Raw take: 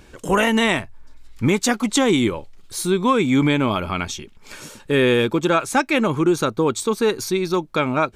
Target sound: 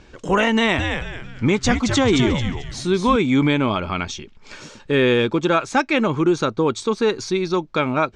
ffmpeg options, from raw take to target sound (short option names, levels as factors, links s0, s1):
-filter_complex "[0:a]lowpass=f=6400:w=0.5412,lowpass=f=6400:w=1.3066,asettb=1/sr,asplit=3[s0][s1][s2];[s0]atrim=end=0.564[s3];[s1]atrim=start=0.56:end=3.16,asetpts=PTS-STARTPTS,afade=t=in:d=0.004:c=qsin,afade=t=out:st=2.596:d=0.004:c=qsin,asplit=5[s4][s5][s6][s7][s8];[s5]adelay=220,afreqshift=-140,volume=0.562[s9];[s6]adelay=440,afreqshift=-280,volume=0.191[s10];[s7]adelay=660,afreqshift=-420,volume=0.0653[s11];[s8]adelay=880,afreqshift=-560,volume=0.0221[s12];[s4][s9][s10][s11][s12]amix=inputs=5:normalize=0,atrim=end_sample=114660[s13];[s2]atrim=start=3.156[s14];[s3][s13]acrossfade=d=0.004:c1=hsin:c2=qsin[s15];[s15][s14]acrossfade=d=0.004:c1=qsin:c2=hsin"